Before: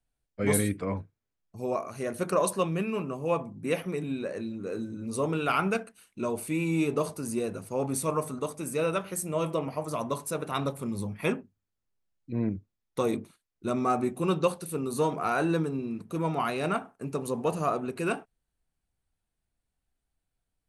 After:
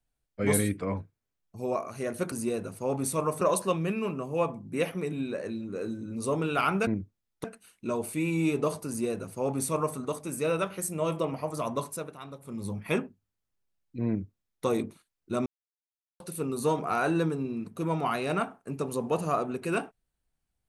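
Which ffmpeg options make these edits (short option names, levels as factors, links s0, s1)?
-filter_complex "[0:a]asplit=9[s0][s1][s2][s3][s4][s5][s6][s7][s8];[s0]atrim=end=2.322[s9];[s1]atrim=start=7.218:end=8.312[s10];[s2]atrim=start=2.318:end=5.782[s11];[s3]atrim=start=12.418:end=12.992[s12];[s4]atrim=start=5.778:end=10.52,asetpts=PTS-STARTPTS,afade=t=out:st=4.382:d=0.36:silence=0.211349[s13];[s5]atrim=start=10.52:end=10.72,asetpts=PTS-STARTPTS,volume=0.211[s14];[s6]atrim=start=10.72:end=13.8,asetpts=PTS-STARTPTS,afade=t=in:d=0.36:silence=0.211349,afade=t=out:st=3.076:d=0.004:c=hsin[s15];[s7]atrim=start=13.8:end=14.54,asetpts=PTS-STARTPTS,volume=0[s16];[s8]atrim=start=14.54,asetpts=PTS-STARTPTS,afade=t=in:d=0.004:c=hsin[s17];[s9][s10]acrossfade=d=0.004:c1=hsin:c2=hsin[s18];[s18][s11]acrossfade=d=0.004:c1=hsin:c2=hsin[s19];[s19][s12]acrossfade=d=0.004:c1=hsin:c2=hsin[s20];[s13][s14][s15][s16][s17]concat=n=5:v=0:a=1[s21];[s20][s21]acrossfade=d=0.004:c1=hsin:c2=hsin"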